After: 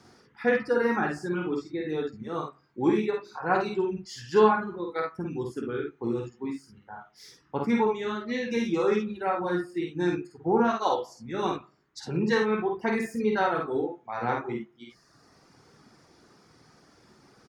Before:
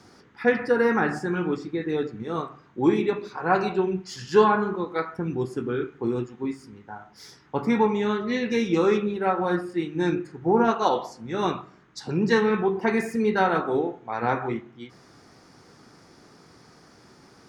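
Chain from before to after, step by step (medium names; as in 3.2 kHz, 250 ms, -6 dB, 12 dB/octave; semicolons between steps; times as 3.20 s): reverb removal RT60 1.2 s; early reflections 51 ms -3.5 dB, 65 ms -10 dB; trim -4 dB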